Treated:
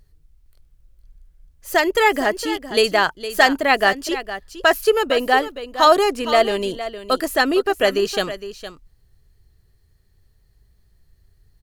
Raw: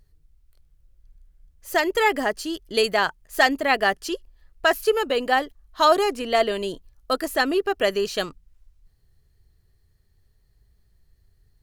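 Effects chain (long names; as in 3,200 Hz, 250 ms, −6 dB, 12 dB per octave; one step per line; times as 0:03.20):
single-tap delay 461 ms −12.5 dB
level +4 dB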